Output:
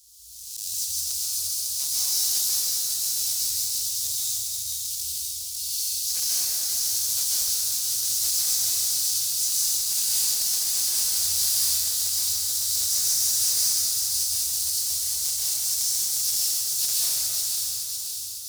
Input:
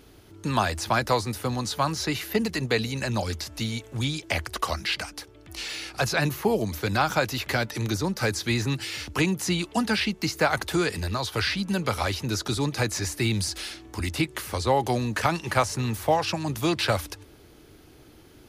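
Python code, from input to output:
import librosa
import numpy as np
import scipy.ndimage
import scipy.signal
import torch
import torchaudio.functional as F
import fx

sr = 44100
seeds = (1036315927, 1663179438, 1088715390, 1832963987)

y = fx.halfwave_hold(x, sr)
y = scipy.signal.sosfilt(scipy.signal.cheby2(4, 60, [180.0, 1700.0], 'bandstop', fs=sr, output='sos'), y)
y = fx.high_shelf(y, sr, hz=6700.0, db=9.5)
y = fx.echo_feedback(y, sr, ms=553, feedback_pct=54, wet_db=-4.5)
y = fx.auto_swell(y, sr, attack_ms=126.0)
y = fx.weighting(y, sr, curve='A')
y = fx.hpss(y, sr, part='percussive', gain_db=-8)
y = np.clip(y, -10.0 ** (-23.5 / 20.0), 10.0 ** (-23.5 / 20.0))
y = fx.rev_plate(y, sr, seeds[0], rt60_s=4.0, hf_ratio=0.45, predelay_ms=115, drr_db=-8.0)
y = fx.pre_swell(y, sr, db_per_s=39.0)
y = F.gain(torch.from_numpy(y), 3.5).numpy()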